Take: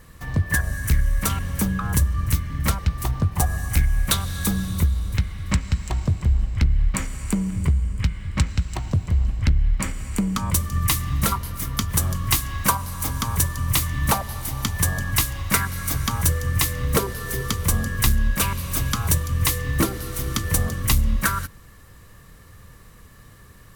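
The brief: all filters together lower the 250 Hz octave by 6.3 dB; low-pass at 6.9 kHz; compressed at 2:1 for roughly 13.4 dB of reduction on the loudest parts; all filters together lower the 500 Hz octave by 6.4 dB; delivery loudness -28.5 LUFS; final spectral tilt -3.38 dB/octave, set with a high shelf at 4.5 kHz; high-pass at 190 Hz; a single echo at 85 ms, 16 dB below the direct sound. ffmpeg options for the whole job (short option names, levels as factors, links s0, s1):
-af "highpass=190,lowpass=6900,equalizer=f=250:t=o:g=-4,equalizer=f=500:t=o:g=-6.5,highshelf=f=4500:g=-3,acompressor=threshold=0.00562:ratio=2,aecho=1:1:85:0.158,volume=4.22"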